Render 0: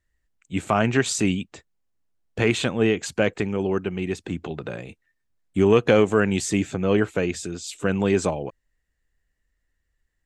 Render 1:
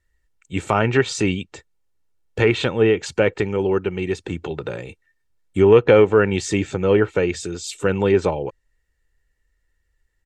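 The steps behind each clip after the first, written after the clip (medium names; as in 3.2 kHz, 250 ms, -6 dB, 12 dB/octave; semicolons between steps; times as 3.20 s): comb 2.2 ms, depth 43%; low-pass that closes with the level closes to 2.9 kHz, closed at -15.5 dBFS; trim +3 dB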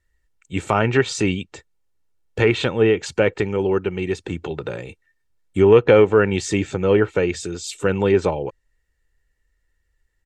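no audible change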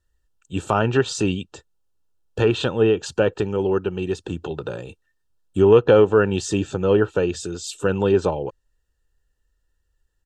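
Butterworth band-stop 2.1 kHz, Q 2.5; trim -1 dB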